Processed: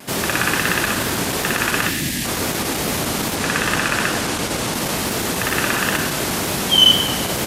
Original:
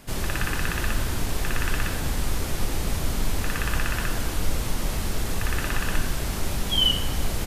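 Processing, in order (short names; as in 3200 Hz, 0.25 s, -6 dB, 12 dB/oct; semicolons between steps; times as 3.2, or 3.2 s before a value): in parallel at -2 dB: one-sided clip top -21.5 dBFS; 1.89–2.25 on the sum: spectral delete 350–1600 Hz; 3.35–4.74 LPF 11000 Hz 12 dB/oct; wow and flutter 56 cents; HPF 180 Hz 12 dB/oct; on a send: split-band echo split 920 Hz, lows 0.54 s, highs 98 ms, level -12 dB; on the sum: gain +6 dB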